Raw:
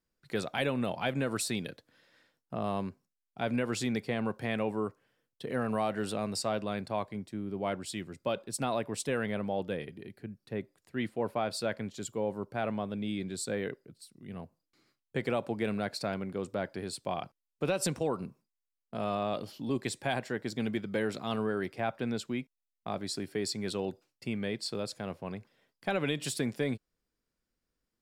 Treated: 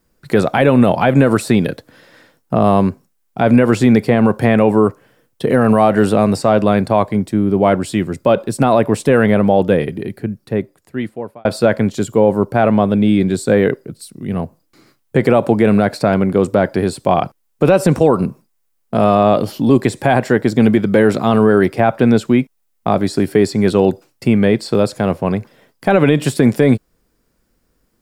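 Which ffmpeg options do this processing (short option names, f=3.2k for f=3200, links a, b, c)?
-filter_complex "[0:a]asplit=2[a][b];[a]atrim=end=11.45,asetpts=PTS-STARTPTS,afade=t=out:st=10.02:d=1.43[c];[b]atrim=start=11.45,asetpts=PTS-STARTPTS,afade=t=in:d=0.004:c=hsin[d];[c][d]concat=n=2:v=0:a=1,acrossover=split=2500[e][f];[f]acompressor=threshold=-46dB:ratio=4:attack=1:release=60[g];[e][g]amix=inputs=2:normalize=0,equalizer=f=3.6k:w=0.5:g=-6.5,alimiter=level_in=23.5dB:limit=-1dB:release=50:level=0:latency=1,volume=-1dB"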